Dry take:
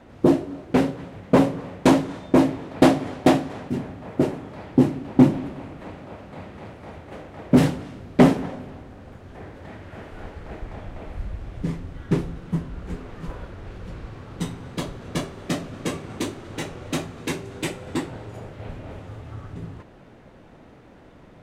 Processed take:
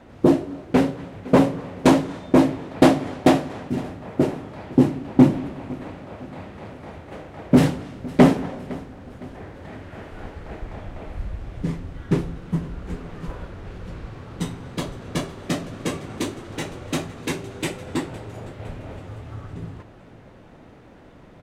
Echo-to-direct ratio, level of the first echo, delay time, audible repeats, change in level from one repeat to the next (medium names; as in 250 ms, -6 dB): -19.0 dB, -20.0 dB, 510 ms, 3, -6.5 dB